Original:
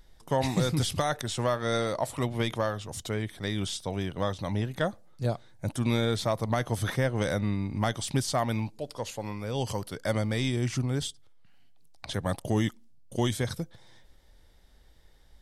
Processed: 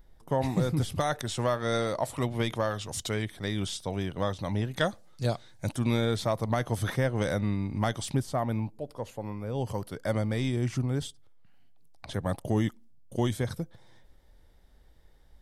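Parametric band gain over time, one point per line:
parametric band 5,200 Hz 2.9 octaves
−10 dB
from 0:01.00 −1.5 dB
from 0:02.71 +5 dB
from 0:03.25 −1.5 dB
from 0:04.77 +7 dB
from 0:05.75 −2.5 dB
from 0:08.15 −13.5 dB
from 0:09.74 −6.5 dB

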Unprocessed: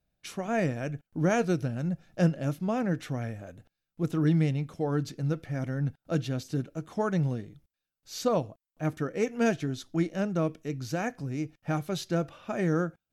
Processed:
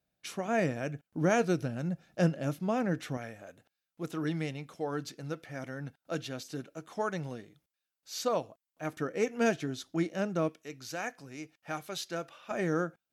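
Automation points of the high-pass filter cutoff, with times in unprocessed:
high-pass filter 6 dB per octave
190 Hz
from 0:03.17 600 Hz
from 0:08.97 270 Hz
from 0:10.49 1,000 Hz
from 0:12.51 330 Hz

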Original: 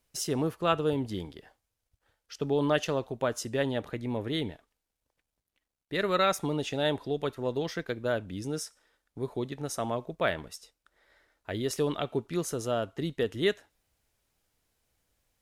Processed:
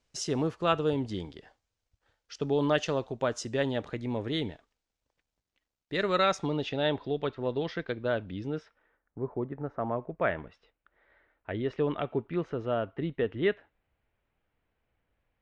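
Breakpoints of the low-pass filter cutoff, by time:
low-pass filter 24 dB per octave
0:06.16 7,300 Hz
0:06.78 4,200 Hz
0:08.31 4,200 Hz
0:09.20 1,600 Hz
0:09.73 1,600 Hz
0:10.54 2,700 Hz

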